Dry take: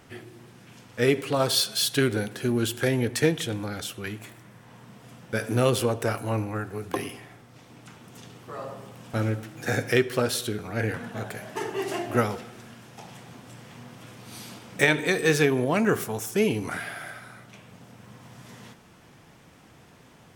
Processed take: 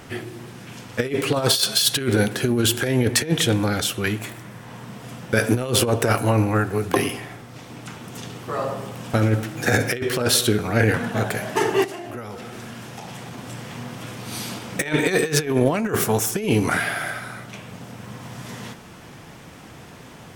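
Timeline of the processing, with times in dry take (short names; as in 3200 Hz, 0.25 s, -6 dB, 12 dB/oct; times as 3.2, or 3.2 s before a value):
11.84–13.38 compressor, threshold -42 dBFS
whole clip: negative-ratio compressor -26 dBFS, ratio -0.5; gain +8 dB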